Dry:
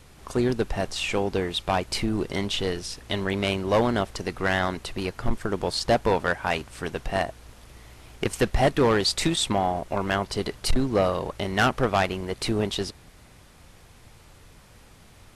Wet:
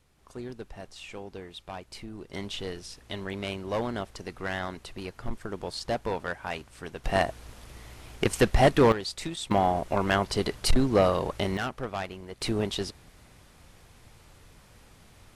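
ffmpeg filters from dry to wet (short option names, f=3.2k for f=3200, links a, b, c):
-af "asetnsamples=n=441:p=0,asendcmd='2.33 volume volume -8.5dB;7.04 volume volume 1dB;8.92 volume volume -11dB;9.51 volume volume 0.5dB;11.57 volume volume -11dB;12.41 volume volume -3dB',volume=-15.5dB"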